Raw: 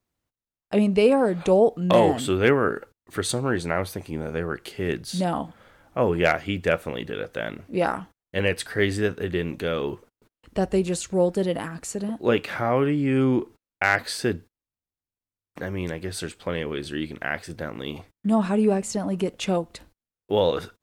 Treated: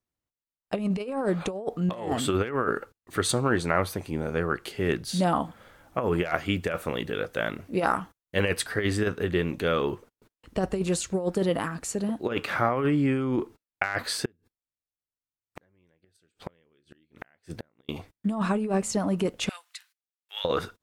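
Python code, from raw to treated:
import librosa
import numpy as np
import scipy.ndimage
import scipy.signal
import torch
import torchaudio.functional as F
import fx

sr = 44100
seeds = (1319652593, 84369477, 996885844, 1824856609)

y = fx.high_shelf(x, sr, hz=7600.0, db=5.5, at=(5.4, 8.64))
y = fx.gate_flip(y, sr, shuts_db=-23.0, range_db=-37, at=(14.25, 17.89))
y = fx.highpass(y, sr, hz=1500.0, slope=24, at=(19.49, 20.45))
y = fx.noise_reduce_blind(y, sr, reduce_db=9)
y = fx.dynamic_eq(y, sr, hz=1200.0, q=2.6, threshold_db=-43.0, ratio=4.0, max_db=6)
y = fx.over_compress(y, sr, threshold_db=-22.0, ratio=-0.5)
y = y * 10.0 ** (-2.0 / 20.0)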